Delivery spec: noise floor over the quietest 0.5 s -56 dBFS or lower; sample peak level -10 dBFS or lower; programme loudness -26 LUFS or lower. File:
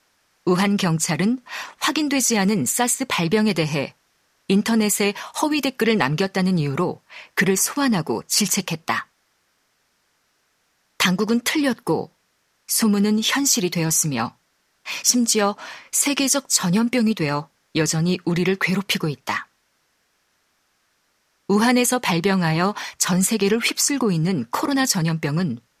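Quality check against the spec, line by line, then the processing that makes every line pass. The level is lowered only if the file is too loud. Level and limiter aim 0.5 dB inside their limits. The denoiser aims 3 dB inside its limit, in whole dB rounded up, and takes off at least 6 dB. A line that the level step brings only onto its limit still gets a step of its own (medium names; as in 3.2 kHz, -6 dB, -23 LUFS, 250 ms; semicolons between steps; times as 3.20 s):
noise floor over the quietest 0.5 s -67 dBFS: pass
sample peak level -3.5 dBFS: fail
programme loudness -20.5 LUFS: fail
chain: trim -6 dB; peak limiter -10.5 dBFS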